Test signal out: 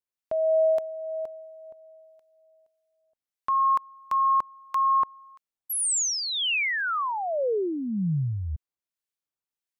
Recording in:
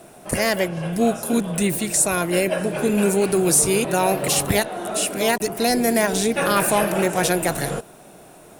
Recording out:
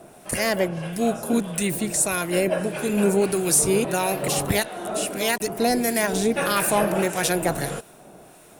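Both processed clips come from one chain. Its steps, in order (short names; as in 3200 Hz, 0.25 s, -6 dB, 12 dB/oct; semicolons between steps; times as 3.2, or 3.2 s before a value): harmonic tremolo 1.6 Hz, depth 50%, crossover 1400 Hz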